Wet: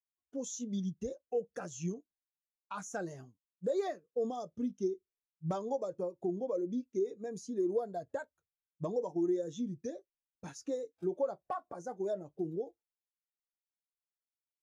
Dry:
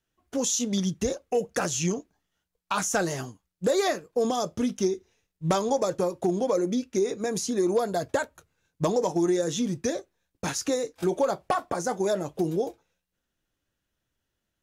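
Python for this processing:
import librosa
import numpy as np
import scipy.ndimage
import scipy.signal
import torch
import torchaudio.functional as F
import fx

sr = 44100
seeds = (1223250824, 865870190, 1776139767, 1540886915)

y = fx.spectral_expand(x, sr, expansion=1.5)
y = F.gain(torch.from_numpy(y), -7.5).numpy()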